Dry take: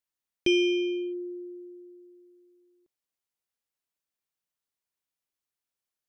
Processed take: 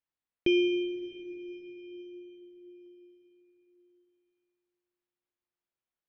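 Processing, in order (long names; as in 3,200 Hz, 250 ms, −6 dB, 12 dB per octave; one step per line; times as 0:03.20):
high-frequency loss of the air 280 metres
dense smooth reverb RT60 4.9 s, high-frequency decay 0.85×, DRR 9.5 dB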